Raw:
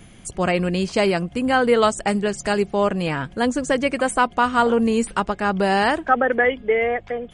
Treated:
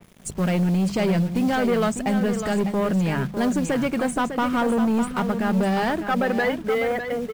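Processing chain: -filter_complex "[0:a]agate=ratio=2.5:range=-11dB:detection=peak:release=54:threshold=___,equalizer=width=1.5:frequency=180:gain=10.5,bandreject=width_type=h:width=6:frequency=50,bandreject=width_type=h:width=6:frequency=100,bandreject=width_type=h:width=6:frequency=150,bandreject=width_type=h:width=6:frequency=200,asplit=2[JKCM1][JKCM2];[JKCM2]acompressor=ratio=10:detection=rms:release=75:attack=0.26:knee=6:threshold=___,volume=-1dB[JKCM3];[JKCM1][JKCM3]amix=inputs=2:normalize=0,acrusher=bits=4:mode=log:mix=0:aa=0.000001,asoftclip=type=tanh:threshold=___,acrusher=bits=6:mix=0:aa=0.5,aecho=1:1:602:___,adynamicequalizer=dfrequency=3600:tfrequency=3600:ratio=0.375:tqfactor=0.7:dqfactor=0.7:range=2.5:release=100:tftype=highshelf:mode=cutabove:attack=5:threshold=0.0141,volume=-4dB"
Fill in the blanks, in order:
-36dB, -23dB, -13dB, 0.376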